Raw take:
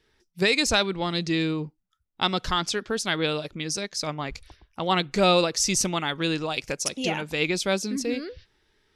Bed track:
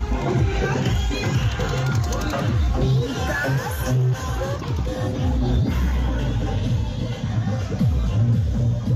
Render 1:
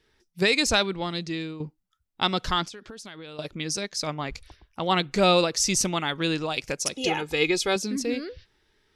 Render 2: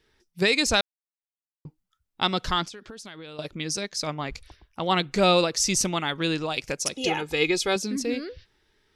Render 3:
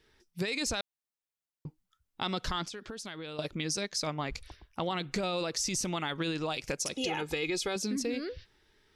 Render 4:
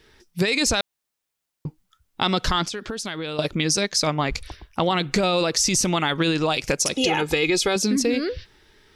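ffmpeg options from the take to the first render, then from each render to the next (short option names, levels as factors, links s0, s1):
-filter_complex "[0:a]asettb=1/sr,asplit=3[s0][s1][s2];[s0]atrim=end=2.644[s3];[s1]atrim=start=2.64:end=3.39,asetpts=PTS-STARTPTS,afade=t=in:d=0.004:c=qsin,afade=t=out:st=0.746:d=0.004:c=qsin,acompressor=threshold=0.0141:ratio=16:attack=3.2:release=140:knee=1:detection=peak[s4];[s2]atrim=start=3.386[s5];[s3][s4]acrossfade=d=0.004:c1=hsin:c2=qsin[s6];[s6][s5]acrossfade=d=0.004:c1=qsin:c2=hsin,asettb=1/sr,asplit=3[s7][s8][s9];[s7]atrim=end=6.964[s10];[s8]atrim=start=6.96:end=7.76,asetpts=PTS-STARTPTS,afade=t=in:d=0.004:c=qsin,afade=t=out:st=0.796:d=0.004:c=qsin,aecho=1:1:2.4:0.65,atrim=end_sample=35280[s11];[s9]atrim=start=7.756[s12];[s10][s11]acrossfade=d=0.004:c1=hsin:c2=qsin[s13];[s13][s12]acrossfade=d=0.004:c1=qsin:c2=hsin,asplit=2[s14][s15];[s14]atrim=end=1.6,asetpts=PTS-STARTPTS,afade=t=out:st=0.77:d=0.83:silence=0.266073[s16];[s15]atrim=start=1.6,asetpts=PTS-STARTPTS,afade=t=in:d=0.004:c=hsin:silence=0.266073[s17];[s16][s17]concat=n=2:v=0:a=1"
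-filter_complex "[0:a]asplit=3[s0][s1][s2];[s0]atrim=end=0.81,asetpts=PTS-STARTPTS,afade=t=out:st=0.806:d=0.004:c=hsin[s3];[s1]atrim=start=0.81:end=1.65,asetpts=PTS-STARTPTS,volume=0[s4];[s2]atrim=start=1.65,asetpts=PTS-STARTPTS,afade=t=in:d=0.004:c=hsin[s5];[s3][s4][s5]concat=n=3:v=0:a=1"
-af "alimiter=limit=0.126:level=0:latency=1:release=24,acompressor=threshold=0.0355:ratio=6"
-af "volume=3.76"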